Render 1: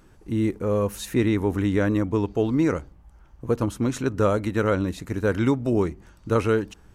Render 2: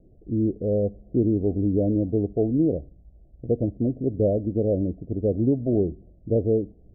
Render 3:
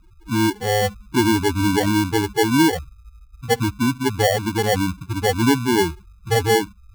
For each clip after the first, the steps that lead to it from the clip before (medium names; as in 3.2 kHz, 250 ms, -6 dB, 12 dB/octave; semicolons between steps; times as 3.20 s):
steep low-pass 710 Hz 96 dB/octave
loudest bins only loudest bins 4; sample-and-hold 35×; trim +6.5 dB